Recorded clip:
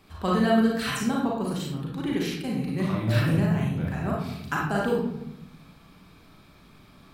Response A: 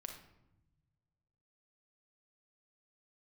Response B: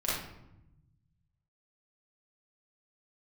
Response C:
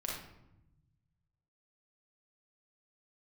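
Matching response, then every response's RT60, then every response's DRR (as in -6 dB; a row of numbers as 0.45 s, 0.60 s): C; 0.90 s, 0.85 s, 0.85 s; 3.0 dB, -9.0 dB, -4.0 dB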